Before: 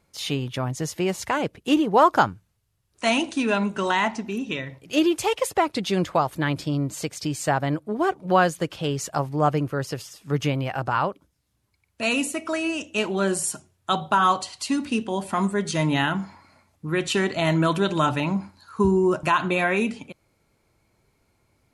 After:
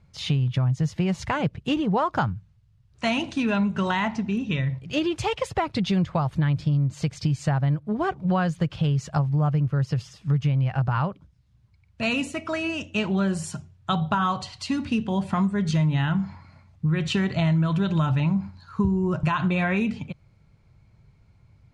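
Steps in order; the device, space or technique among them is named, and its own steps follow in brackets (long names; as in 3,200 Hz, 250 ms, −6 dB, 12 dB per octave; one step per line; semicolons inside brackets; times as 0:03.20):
jukebox (low-pass filter 5,000 Hz 12 dB per octave; low shelf with overshoot 210 Hz +12 dB, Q 1.5; downward compressor 5 to 1, threshold −20 dBFS, peak gain reduction 11.5 dB)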